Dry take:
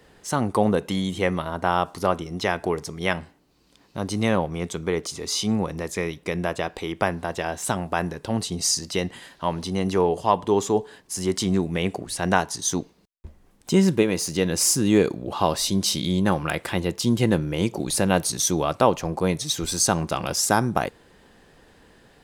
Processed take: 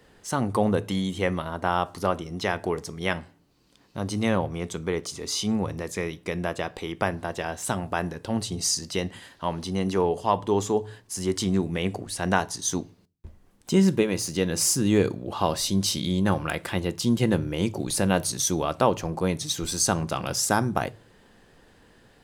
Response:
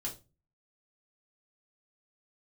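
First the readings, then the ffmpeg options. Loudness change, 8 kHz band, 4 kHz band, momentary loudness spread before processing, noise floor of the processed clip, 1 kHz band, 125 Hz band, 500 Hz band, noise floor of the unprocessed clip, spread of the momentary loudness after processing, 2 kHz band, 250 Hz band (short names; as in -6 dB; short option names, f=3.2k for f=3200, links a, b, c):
-2.5 dB, -2.5 dB, -2.5 dB, 8 LU, -58 dBFS, -3.0 dB, -1.5 dB, -2.5 dB, -58 dBFS, 8 LU, -2.5 dB, -2.0 dB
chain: -filter_complex "[0:a]asplit=2[a][b];[b]equalizer=f=110:w=4.3:g=14[c];[1:a]atrim=start_sample=2205[d];[c][d]afir=irnorm=-1:irlink=0,volume=-14.5dB[e];[a][e]amix=inputs=2:normalize=0,volume=-3.5dB"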